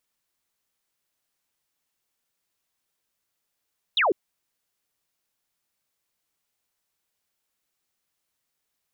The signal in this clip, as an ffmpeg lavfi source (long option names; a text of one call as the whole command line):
ffmpeg -f lavfi -i "aevalsrc='0.126*clip(t/0.002,0,1)*clip((0.15-t)/0.002,0,1)*sin(2*PI*4000*0.15/log(320/4000)*(exp(log(320/4000)*t/0.15)-1))':duration=0.15:sample_rate=44100" out.wav